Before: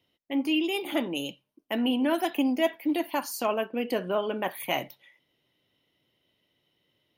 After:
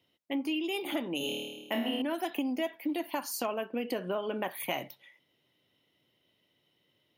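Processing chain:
0:01.18–0:02.02: flutter between parallel walls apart 4.5 metres, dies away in 1.1 s
downward compressor 6 to 1, threshold −29 dBFS, peak gain reduction 10 dB
high-pass filter 77 Hz

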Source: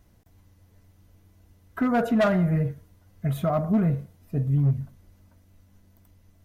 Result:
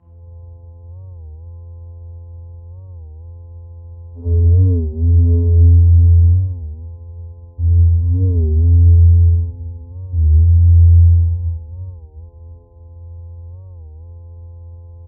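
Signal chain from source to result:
comb filter 1.1 ms, depth 91%
downward compressor 2.5 to 1, threshold −39 dBFS, peak gain reduction 16.5 dB
channel vocoder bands 4, square 199 Hz
low-pass with resonance 870 Hz, resonance Q 4.9
reverse bouncing-ball delay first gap 20 ms, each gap 1.1×, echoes 5
hum with harmonics 400 Hz, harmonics 6, −65 dBFS −1 dB per octave
tempo change 1×
convolution reverb RT60 1.1 s, pre-delay 3 ms, DRR −9.5 dB
wrong playback speed 78 rpm record played at 33 rpm
wow of a warped record 33 1/3 rpm, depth 160 cents

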